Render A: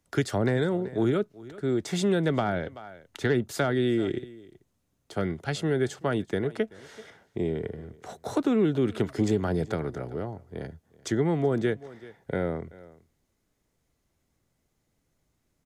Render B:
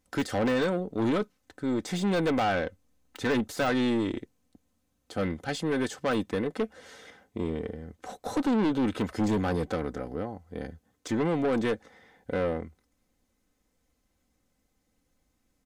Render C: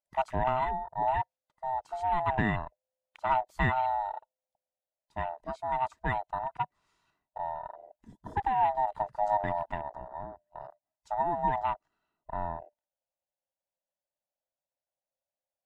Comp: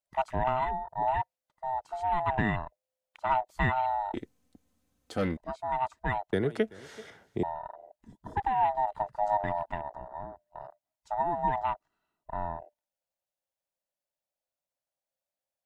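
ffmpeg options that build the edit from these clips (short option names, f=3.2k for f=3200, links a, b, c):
-filter_complex "[2:a]asplit=3[a][b][c];[a]atrim=end=4.142[d];[1:a]atrim=start=4.138:end=5.372[e];[b]atrim=start=5.368:end=6.332[f];[0:a]atrim=start=6.328:end=7.432[g];[c]atrim=start=7.428[h];[d][e]acrossfade=d=0.004:c1=hsin:c2=hsin[i];[i][f]acrossfade=d=0.004:c1=hsin:c2=hsin[j];[j][g]acrossfade=d=0.004:c1=hsin:c2=hsin[k];[k][h]acrossfade=d=0.004:c1=hsin:c2=hsin"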